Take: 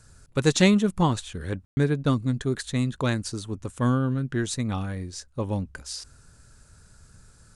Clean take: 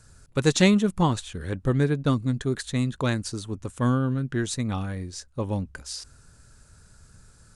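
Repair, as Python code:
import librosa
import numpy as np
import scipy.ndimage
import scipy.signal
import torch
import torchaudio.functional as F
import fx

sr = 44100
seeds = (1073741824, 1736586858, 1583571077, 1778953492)

y = fx.fix_ambience(x, sr, seeds[0], print_start_s=6.64, print_end_s=7.14, start_s=1.65, end_s=1.77)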